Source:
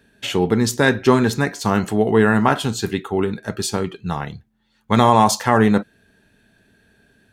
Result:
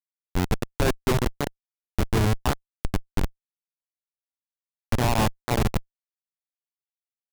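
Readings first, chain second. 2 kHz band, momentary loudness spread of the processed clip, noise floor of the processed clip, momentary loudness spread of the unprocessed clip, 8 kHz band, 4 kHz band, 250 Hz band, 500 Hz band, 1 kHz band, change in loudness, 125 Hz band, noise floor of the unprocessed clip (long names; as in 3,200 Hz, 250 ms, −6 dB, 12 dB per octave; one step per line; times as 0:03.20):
−11.0 dB, 10 LU, below −85 dBFS, 10 LU, −9.5 dB, −8.0 dB, −11.5 dB, −11.5 dB, −12.0 dB, −8.5 dB, −4.0 dB, −64 dBFS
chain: elliptic low-pass filter 3,400 Hz, stop band 40 dB
low-shelf EQ 160 Hz −6.5 dB
in parallel at −0.5 dB: downward compressor 6 to 1, threshold −29 dBFS, peak gain reduction 18 dB
on the sum: comparator with hysteresis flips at −11.5 dBFS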